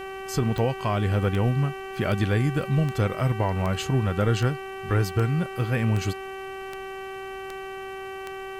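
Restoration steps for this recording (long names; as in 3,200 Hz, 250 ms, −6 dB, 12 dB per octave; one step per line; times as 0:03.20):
click removal
hum removal 384.9 Hz, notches 8
downward expander −28 dBFS, range −21 dB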